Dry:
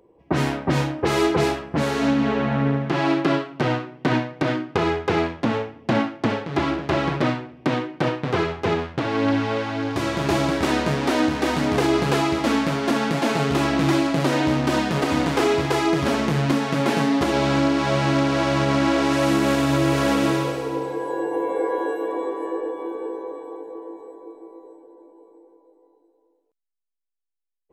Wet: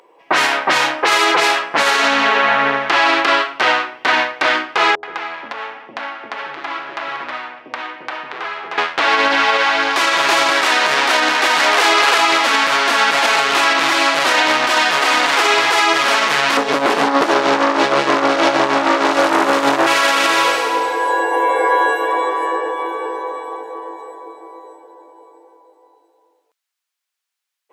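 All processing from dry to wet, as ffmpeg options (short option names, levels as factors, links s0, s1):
-filter_complex "[0:a]asettb=1/sr,asplit=3[s0][s1][s2];[s0]atrim=end=4.954[s3];[s1]atrim=start=4.95:end=8.78,asetpts=PTS-STARTPTS,afade=t=in:d=0.004:c=qsin,afade=t=out:st=3.826:d=0.004:c=qsin,lowpass=f=2100:p=1,acompressor=threshold=0.0158:ratio=3:attack=3.2:release=140:knee=1:detection=peak,acrossover=split=480[s4][s5];[s5]adelay=80[s6];[s4][s6]amix=inputs=2:normalize=0,atrim=end_sample=168903[s7];[s2]atrim=start=8.776[s8];[s3][s7]acrossfade=d=0.004:c1=hsin:c2=qsin[s9];[s9][s8]acrossfade=d=0.004:c1=qsin:c2=hsin,asettb=1/sr,asplit=3[s10][s11][s12];[s10]atrim=end=11.604[s13];[s11]atrim=start=11.6:end=12.18,asetpts=PTS-STARTPTS,afade=t=in:d=0.004:c=qsin,afade=t=out:st=0.576:d=0.004:c=qsin,highpass=340,acontrast=79[s14];[s12]atrim=start=12.176[s15];[s13][s14]acrossfade=d=0.004:c1=hsin:c2=qsin[s16];[s16][s15]acrossfade=d=0.004:c1=qsin:c2=hsin,asettb=1/sr,asplit=3[s17][s18][s19];[s17]atrim=end=16.574[s20];[s18]atrim=start=16.57:end=19.87,asetpts=PTS-STARTPTS,afade=t=in:d=0.004:c=qsin,afade=t=out:st=3.296:d=0.004:c=qsin,lowshelf=f=630:t=q:w=1.5:g=13.5,aeval=exprs='(tanh(2.51*val(0)+0.6)-tanh(0.6))/2.51':c=same,tremolo=f=6.4:d=0.7[s21];[s19]atrim=start=19.866[s22];[s20][s21]acrossfade=d=0.004:c1=hsin:c2=qsin[s23];[s23][s22]acrossfade=d=0.004:c1=qsin:c2=hsin,highpass=1100,highshelf=f=7400:g=-7.5,alimiter=level_in=12.6:limit=0.891:release=50:level=0:latency=1,volume=0.75"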